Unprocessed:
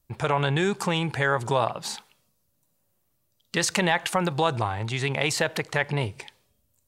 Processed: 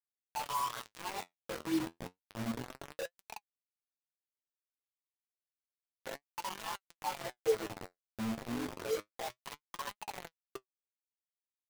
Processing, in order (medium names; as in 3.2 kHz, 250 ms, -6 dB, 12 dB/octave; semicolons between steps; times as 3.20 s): rattle on loud lows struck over -30 dBFS, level -28 dBFS; hard clipper -26 dBFS, distortion -5 dB; bass shelf 320 Hz +5 dB; wah-wah 0.57 Hz 210–1100 Hz, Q 21; hum notches 50/100/150/200 Hz; granular stretch 1.7×, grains 44 ms; on a send at -19.5 dB: treble shelf 5.5 kHz -11 dB + reverberation RT60 1.4 s, pre-delay 66 ms; on the sum: word length cut 8-bit, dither none; flange 0.3 Hz, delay 4.5 ms, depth 8.9 ms, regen +55%; trim +13.5 dB